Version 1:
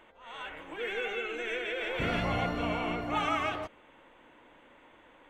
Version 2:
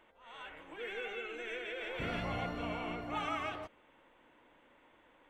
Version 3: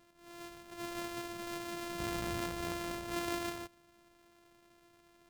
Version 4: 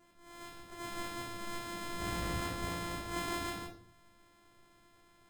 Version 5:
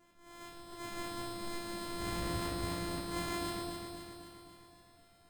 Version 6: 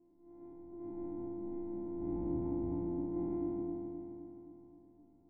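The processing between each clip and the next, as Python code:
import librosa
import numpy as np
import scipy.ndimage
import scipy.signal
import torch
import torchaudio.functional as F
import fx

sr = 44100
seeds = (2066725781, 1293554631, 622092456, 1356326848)

y1 = fx.notch(x, sr, hz=6600.0, q=22.0)
y1 = y1 * 10.0 ** (-7.0 / 20.0)
y2 = np.r_[np.sort(y1[:len(y1) // 128 * 128].reshape(-1, 128), axis=1).ravel(), y1[len(y1) // 128 * 128:]]
y3 = fx.room_shoebox(y2, sr, seeds[0], volume_m3=430.0, walls='furnished', distance_m=3.3)
y3 = y3 * 10.0 ** (-3.5 / 20.0)
y4 = fx.echo_feedback(y3, sr, ms=261, feedback_pct=59, wet_db=-5.5)
y4 = y4 * 10.0 ** (-1.0 / 20.0)
y5 = fx.spec_trails(y4, sr, decay_s=2.16)
y5 = fx.formant_cascade(y5, sr, vowel='u')
y5 = y5 * 10.0 ** (7.5 / 20.0)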